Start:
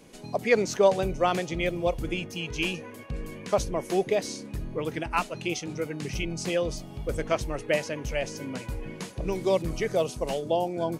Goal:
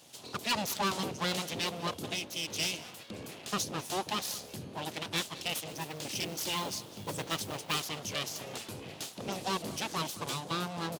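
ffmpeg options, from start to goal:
-filter_complex "[0:a]aeval=exprs='abs(val(0))':c=same,highshelf=f=2.6k:t=q:w=1.5:g=7,asettb=1/sr,asplit=3[a][b][c];[a]atrim=end=5.684[d];[b]atrim=start=5.68:end=7.83,asetpts=PTS-STARTPTS,afade=t=in:d=0.004:c=qsin,afade=t=out:st=2.146:d=0.004:c=qsin,acrusher=bits=4:mode=log:mix=0:aa=0.000001[e];[c]atrim=start=7.826[f];[d][e]acrossfade=d=0.004:c1=hsin:c2=qsin[g];[g][f]acrossfade=d=0.004:c1=qsin:c2=hsin,highpass=f=100:w=0.5412,highpass=f=100:w=1.3066,asoftclip=type=tanh:threshold=-19.5dB,aecho=1:1:197:0.119,volume=-3dB"

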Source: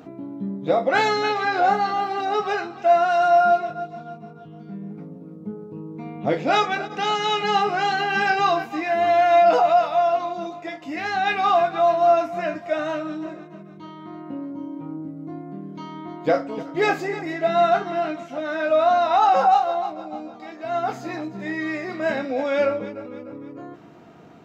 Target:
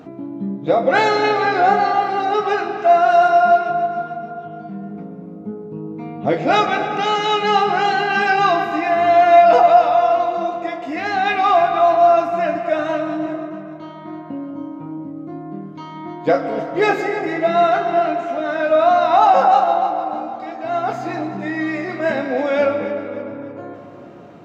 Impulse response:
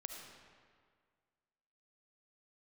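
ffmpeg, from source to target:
-filter_complex "[0:a]asplit=2[a][b];[b]highshelf=f=5.2k:g=-10.5[c];[1:a]atrim=start_sample=2205,asetrate=24696,aresample=44100[d];[c][d]afir=irnorm=-1:irlink=0,volume=2dB[e];[a][e]amix=inputs=2:normalize=0,volume=-2dB"

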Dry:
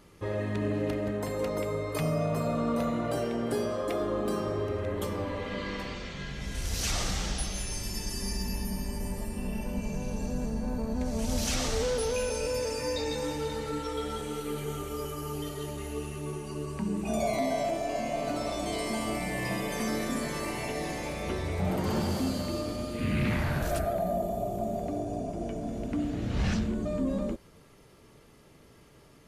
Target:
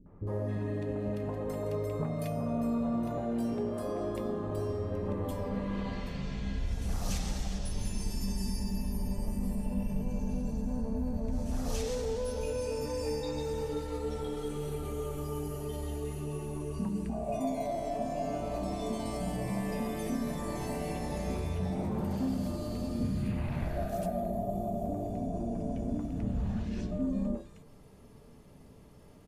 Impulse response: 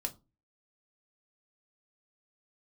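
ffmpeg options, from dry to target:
-filter_complex "[0:a]tiltshelf=f=1.2k:g=6,acompressor=threshold=-27dB:ratio=6,acrossover=split=370|1600[a][b][c];[b]adelay=60[d];[c]adelay=270[e];[a][d][e]amix=inputs=3:normalize=0,asplit=2[f][g];[1:a]atrim=start_sample=2205,highshelf=f=6.5k:g=10.5[h];[g][h]afir=irnorm=-1:irlink=0,volume=-2dB[i];[f][i]amix=inputs=2:normalize=0,volume=-7dB"

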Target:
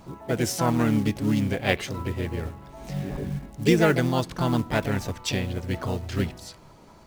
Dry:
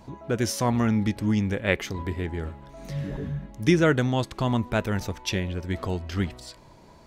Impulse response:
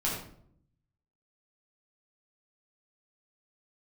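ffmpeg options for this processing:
-filter_complex "[0:a]acrusher=bits=6:mode=log:mix=0:aa=0.000001,asplit=2[a][b];[b]asetrate=58866,aresample=44100,atempo=0.749154,volume=-5dB[c];[a][c]amix=inputs=2:normalize=0,asplit=2[d][e];[1:a]atrim=start_sample=2205[f];[e][f]afir=irnorm=-1:irlink=0,volume=-29.5dB[g];[d][g]amix=inputs=2:normalize=0,volume=-1dB"

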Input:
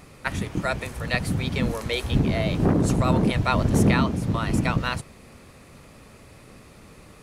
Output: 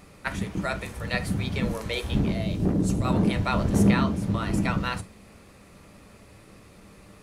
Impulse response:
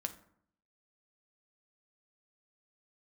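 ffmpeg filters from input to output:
-filter_complex "[0:a]asettb=1/sr,asplit=3[a][b][c];[a]atrim=end=2.324[d];[b]atrim=start=2.32:end=3.05,asetpts=PTS-STARTPTS,afade=t=in:d=0.004:c=qsin,afade=t=out:st=0.726:d=0.004:c=qsin,equalizer=f=1.2k:t=o:w=2.4:g=-9[e];[c]atrim=start=3.046[f];[d][e]acrossfade=d=0.004:c1=hsin:c2=qsin[g];[g][f]acrossfade=d=0.004:c1=qsin:c2=hsin[h];[1:a]atrim=start_sample=2205,atrim=end_sample=3528[i];[h][i]afir=irnorm=-1:irlink=0,volume=-2dB"

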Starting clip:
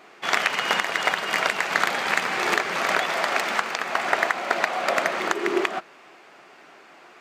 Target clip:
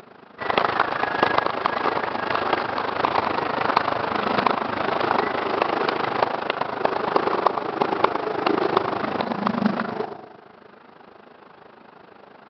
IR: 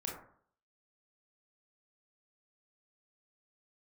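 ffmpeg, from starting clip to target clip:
-filter_complex "[0:a]acompressor=mode=upward:threshold=-44dB:ratio=2.5,asplit=2[a][b];[1:a]atrim=start_sample=2205,lowshelf=f=280:g=-10.5[c];[b][c]afir=irnorm=-1:irlink=0,volume=-6.5dB[d];[a][d]amix=inputs=2:normalize=0,asetrate=25442,aresample=44100,asplit=2[e][f];[f]adelay=110,lowpass=f=1.7k:p=1,volume=-7.5dB,asplit=2[g][h];[h]adelay=110,lowpass=f=1.7k:p=1,volume=0.51,asplit=2[i][j];[j]adelay=110,lowpass=f=1.7k:p=1,volume=0.51,asplit=2[k][l];[l]adelay=110,lowpass=f=1.7k:p=1,volume=0.51,asplit=2[m][n];[n]adelay=110,lowpass=f=1.7k:p=1,volume=0.51,asplit=2[o][p];[p]adelay=110,lowpass=f=1.7k:p=1,volume=0.51[q];[e][g][i][k][m][o][q]amix=inputs=7:normalize=0,tremolo=f=26:d=0.75,aresample=11025,acrusher=bits=5:mode=log:mix=0:aa=0.000001,aresample=44100,volume=1.5dB"

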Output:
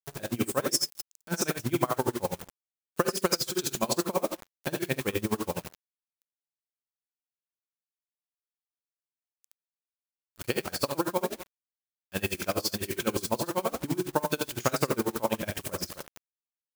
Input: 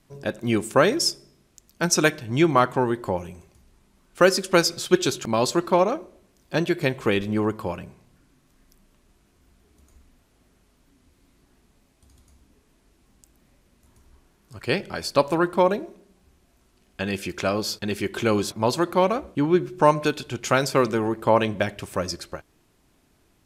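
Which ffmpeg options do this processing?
-af "acompressor=threshold=-20dB:ratio=6,aecho=1:1:50|58|108|130|315:0.126|0.473|0.531|0.158|0.141,acrusher=bits=5:mix=0:aa=0.000001,atempo=1.4,crystalizer=i=1:c=0,aeval=exprs='val(0)*pow(10,-25*(0.5-0.5*cos(2*PI*12*n/s))/20)':c=same"

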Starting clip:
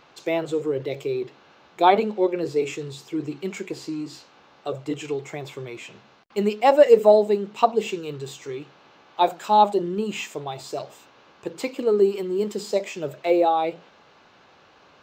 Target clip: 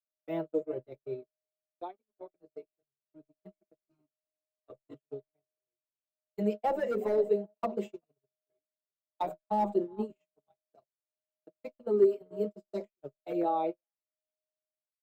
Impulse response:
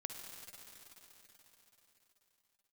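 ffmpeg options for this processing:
-filter_complex "[0:a]aeval=exprs='val(0)+0.0282*sin(2*PI*620*n/s)':c=same,asplit=3[a][b][c];[a]afade=t=out:st=1.19:d=0.02[d];[b]acompressor=threshold=-23dB:ratio=16,afade=t=in:st=1.19:d=0.02,afade=t=out:st=3.36:d=0.02[e];[c]afade=t=in:st=3.36:d=0.02[f];[d][e][f]amix=inputs=3:normalize=0,asplit=2[g][h];[h]adelay=382,lowpass=f=2.5k:p=1,volume=-19.5dB,asplit=2[i][j];[j]adelay=382,lowpass=f=2.5k:p=1,volume=0.18[k];[g][i][k]amix=inputs=3:normalize=0,volume=11dB,asoftclip=hard,volume=-11dB,agate=range=-58dB:threshold=-23dB:ratio=16:detection=peak,equalizer=f=4.5k:t=o:w=2.7:g=-9.5,acrossover=split=500[l][m];[m]acompressor=threshold=-22dB:ratio=3[n];[l][n]amix=inputs=2:normalize=0,adynamicequalizer=threshold=0.0251:dfrequency=240:dqfactor=0.73:tfrequency=240:tqfactor=0.73:attack=5:release=100:ratio=0.375:range=2:mode=boostabove:tftype=bell,asplit=2[o][p];[p]adelay=5.2,afreqshift=1[q];[o][q]amix=inputs=2:normalize=1,volume=-6dB"

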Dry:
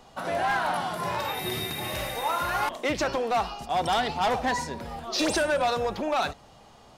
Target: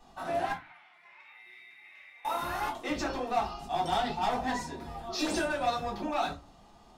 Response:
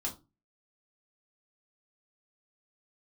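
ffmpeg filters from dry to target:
-filter_complex "[0:a]asettb=1/sr,asplit=3[a][b][c];[a]atrim=end=0.524[d];[b]atrim=start=0.52:end=2.25,asetpts=PTS-STARTPTS,afade=t=in:d=0.004:c=qsin,afade=t=out:st=1.726:d=0.004:c=qsin,bandpass=f=2.2k:t=q:w=10:csg=0[e];[c]atrim=start=2.246[f];[d][e]acrossfade=d=0.004:c1=hsin:c2=qsin[g];[g][f]acrossfade=d=0.004:c1=qsin:c2=hsin[h];[1:a]atrim=start_sample=2205[i];[h][i]afir=irnorm=-1:irlink=0,volume=-7.5dB"

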